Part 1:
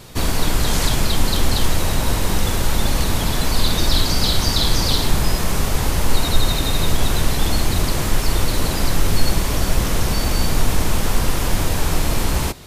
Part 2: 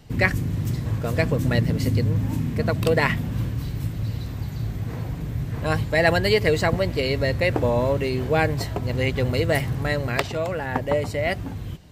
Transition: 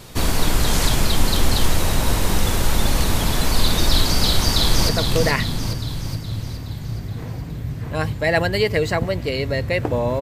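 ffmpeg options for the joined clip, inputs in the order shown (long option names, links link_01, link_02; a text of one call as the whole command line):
ffmpeg -i cue0.wav -i cue1.wav -filter_complex "[0:a]apad=whole_dur=10.21,atrim=end=10.21,atrim=end=4.892[link_01];[1:a]atrim=start=2.598:end=7.92[link_02];[link_01][link_02]acrossfade=duration=0.004:curve1=hsin:curve2=hsin,asplit=2[link_03][link_04];[link_04]afade=type=in:start_time=4.36:duration=0.01,afade=type=out:start_time=4.89:duration=0.01,aecho=0:1:420|840|1260|1680|2100|2520|2940:0.562341|0.309288|0.170108|0.0935595|0.0514577|0.0283018|0.015566[link_05];[link_03][link_05]amix=inputs=2:normalize=0" out.wav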